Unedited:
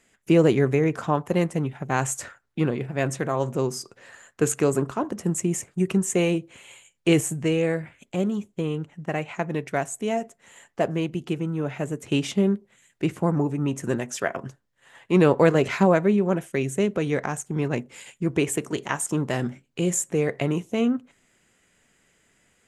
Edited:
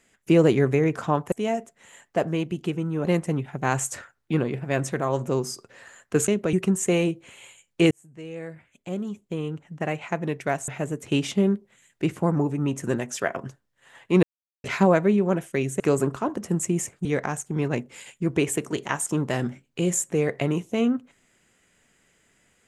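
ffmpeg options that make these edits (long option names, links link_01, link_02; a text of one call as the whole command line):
ffmpeg -i in.wav -filter_complex "[0:a]asplit=11[link_01][link_02][link_03][link_04][link_05][link_06][link_07][link_08][link_09][link_10][link_11];[link_01]atrim=end=1.322[link_12];[link_02]atrim=start=9.948:end=11.682[link_13];[link_03]atrim=start=1.318:end=4.552[link_14];[link_04]atrim=start=16.798:end=17.052[link_15];[link_05]atrim=start=5.798:end=7.18,asetpts=PTS-STARTPTS,afade=type=out:start_time=1.378:duration=0.004:curve=hsin[link_16];[link_06]atrim=start=7.18:end=9.952,asetpts=PTS-STARTPTS,afade=type=in:duration=2.02[link_17];[link_07]atrim=start=11.678:end=15.23,asetpts=PTS-STARTPTS,afade=type=out:start_time=3.548:duration=0.004:curve=hsin[link_18];[link_08]atrim=start=15.23:end=15.64,asetpts=PTS-STARTPTS,volume=0[link_19];[link_09]atrim=start=15.64:end=16.802,asetpts=PTS-STARTPTS,afade=type=in:duration=0.004:curve=hsin[link_20];[link_10]atrim=start=4.548:end=5.802[link_21];[link_11]atrim=start=17.048[link_22];[link_12][link_13]acrossfade=duration=0.004:curve1=hsin:curve2=hsin[link_23];[link_23][link_14]acrossfade=duration=0.004:curve1=hsin:curve2=hsin[link_24];[link_24][link_15]acrossfade=duration=0.004:curve1=hsin:curve2=hsin[link_25];[link_16][link_17]concat=n=2:v=0:a=1[link_26];[link_25][link_26]acrossfade=duration=0.004:curve1=hsin:curve2=hsin[link_27];[link_18][link_19][link_20]concat=n=3:v=0:a=1[link_28];[link_27][link_28]acrossfade=duration=0.004:curve1=hsin:curve2=hsin[link_29];[link_29][link_21]acrossfade=duration=0.004:curve1=hsin:curve2=hsin[link_30];[link_30][link_22]acrossfade=duration=0.004:curve1=hsin:curve2=hsin" out.wav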